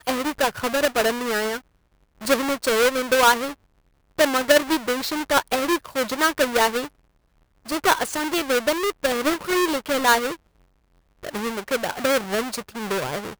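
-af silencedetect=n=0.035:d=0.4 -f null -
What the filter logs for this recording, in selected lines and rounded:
silence_start: 1.57
silence_end: 2.23 | silence_duration: 0.65
silence_start: 3.52
silence_end: 4.19 | silence_duration: 0.66
silence_start: 6.86
silence_end: 7.69 | silence_duration: 0.83
silence_start: 10.34
silence_end: 11.24 | silence_duration: 0.90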